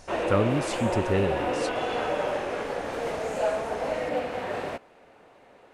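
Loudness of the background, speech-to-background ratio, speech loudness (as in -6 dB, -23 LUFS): -29.5 LUFS, 1.0 dB, -28.5 LUFS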